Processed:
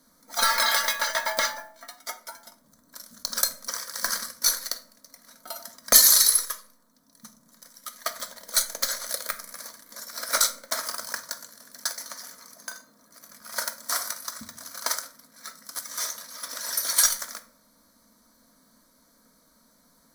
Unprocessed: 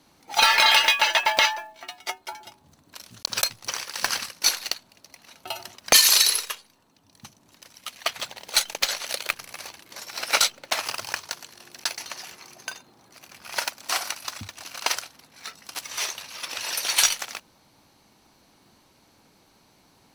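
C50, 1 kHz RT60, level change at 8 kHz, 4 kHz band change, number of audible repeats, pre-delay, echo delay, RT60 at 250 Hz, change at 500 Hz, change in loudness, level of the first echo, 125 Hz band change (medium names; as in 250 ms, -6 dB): 15.0 dB, 0.45 s, +1.5 dB, -5.5 dB, no echo, 3 ms, no echo, 0.95 s, -2.5 dB, -1.5 dB, no echo, no reading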